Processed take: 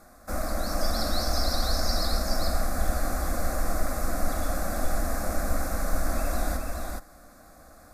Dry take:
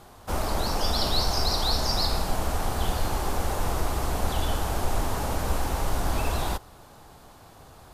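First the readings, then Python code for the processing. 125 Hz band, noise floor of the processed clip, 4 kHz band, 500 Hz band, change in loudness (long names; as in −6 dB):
−3.0 dB, −52 dBFS, −5.0 dB, −0.5 dB, −2.0 dB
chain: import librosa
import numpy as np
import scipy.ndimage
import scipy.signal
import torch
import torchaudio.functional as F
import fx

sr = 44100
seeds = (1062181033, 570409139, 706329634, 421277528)

y = fx.fixed_phaser(x, sr, hz=610.0, stages=8)
y = y + 10.0 ** (-3.5 / 20.0) * np.pad(y, (int(420 * sr / 1000.0), 0))[:len(y)]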